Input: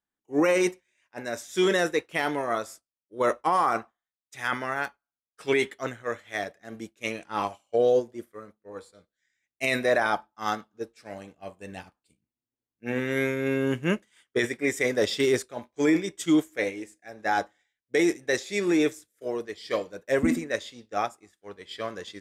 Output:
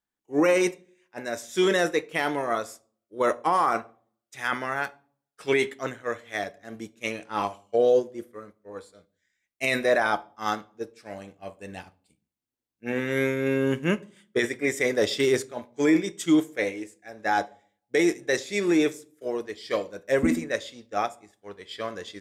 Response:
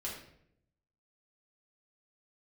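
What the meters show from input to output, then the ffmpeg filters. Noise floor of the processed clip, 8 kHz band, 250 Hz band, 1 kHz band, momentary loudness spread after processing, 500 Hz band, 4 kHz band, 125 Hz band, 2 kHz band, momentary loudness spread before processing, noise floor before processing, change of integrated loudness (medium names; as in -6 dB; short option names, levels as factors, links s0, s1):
under -85 dBFS, +1.0 dB, +1.0 dB, +1.0 dB, 18 LU, +1.0 dB, +1.0 dB, +0.5 dB, +1.0 dB, 18 LU, under -85 dBFS, +1.0 dB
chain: -filter_complex "[0:a]asplit=2[s0][s1];[1:a]atrim=start_sample=2205,asetrate=74970,aresample=44100[s2];[s1][s2]afir=irnorm=-1:irlink=0,volume=0.299[s3];[s0][s3]amix=inputs=2:normalize=0"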